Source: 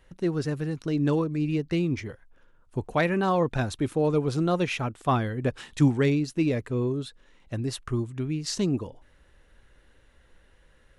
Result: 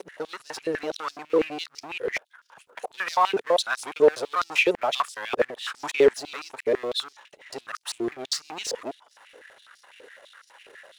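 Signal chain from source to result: time reversed locally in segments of 198 ms; power-law waveshaper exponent 0.7; step-sequenced high-pass 12 Hz 440–5100 Hz; trim -3 dB

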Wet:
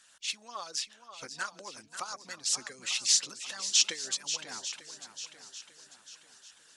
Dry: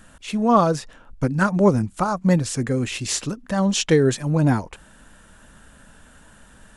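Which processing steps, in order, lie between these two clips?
compression, threshold -19 dBFS, peak gain reduction 9 dB; band-pass filter 5.1 kHz, Q 1.5; shuffle delay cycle 895 ms, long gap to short 1.5:1, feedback 38%, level -10 dB; harmonic-percussive split harmonic -13 dB; trim +6 dB

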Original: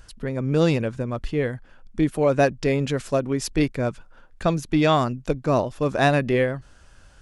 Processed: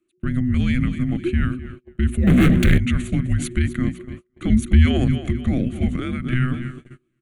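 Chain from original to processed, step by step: frequency shift -380 Hz; hum notches 60/120/180/240 Hz; feedback delay 255 ms, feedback 41%, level -16 dB; 2.27–2.78 s: waveshaping leveller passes 5; peak limiter -16 dBFS, peak gain reduction 10 dB; 4.50–5.18 s: tone controls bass +6 dB, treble +4 dB; 5.93–6.33 s: compression, threshold -27 dBFS, peak gain reduction 6.5 dB; static phaser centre 2.2 kHz, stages 4; gate -40 dBFS, range -29 dB; trim +6.5 dB

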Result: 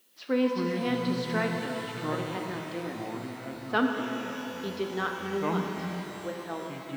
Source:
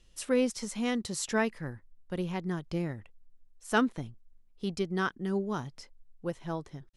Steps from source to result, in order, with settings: elliptic band-pass 240–4300 Hz; ever faster or slower copies 142 ms, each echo -6 st, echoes 2, each echo -6 dB; added noise blue -66 dBFS; pitch-shifted reverb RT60 3.7 s, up +12 st, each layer -8 dB, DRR 2 dB

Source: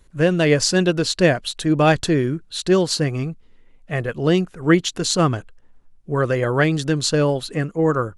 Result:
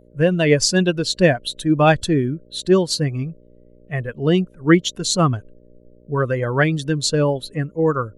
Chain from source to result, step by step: expander on every frequency bin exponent 1.5; mains buzz 60 Hz, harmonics 10, -54 dBFS -1 dB/octave; trim +3 dB

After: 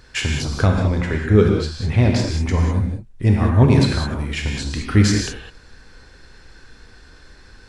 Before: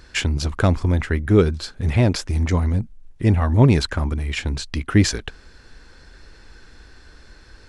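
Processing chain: 0.53–2.43 s: low-pass 8 kHz 12 dB/octave; gated-style reverb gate 230 ms flat, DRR 0 dB; trim -1.5 dB

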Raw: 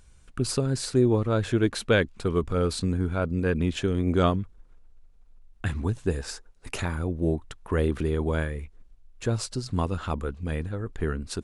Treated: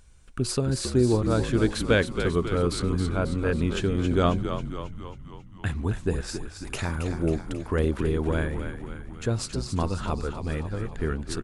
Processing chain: de-hum 182.3 Hz, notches 6; frequency-shifting echo 271 ms, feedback 58%, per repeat -56 Hz, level -8 dB

